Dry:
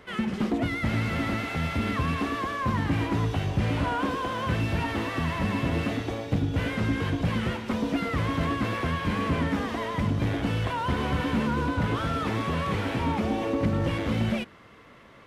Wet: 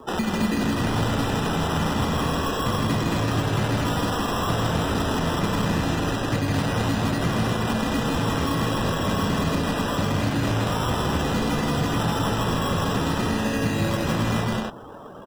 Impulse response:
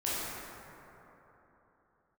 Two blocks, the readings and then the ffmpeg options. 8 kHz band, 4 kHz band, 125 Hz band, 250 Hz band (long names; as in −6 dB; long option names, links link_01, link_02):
+13.0 dB, +7.5 dB, +3.0 dB, +3.5 dB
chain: -filter_complex "[0:a]equalizer=frequency=790:width=2.1:gain=-6.5,aexciter=amount=6.9:drive=9.7:freq=4800,highpass=100,acrusher=samples=20:mix=1:aa=0.000001,lowshelf=frequency=130:gain=-6,aecho=1:1:160.3|256.6:0.794|0.562,acrossover=split=160|1400[link_01][link_02][link_03];[link_01]acompressor=threshold=-32dB:ratio=4[link_04];[link_02]acompressor=threshold=-35dB:ratio=4[link_05];[link_03]acompressor=threshold=-38dB:ratio=4[link_06];[link_04][link_05][link_06]amix=inputs=3:normalize=0,afftdn=noise_reduction=17:noise_floor=-48,volume=8.5dB"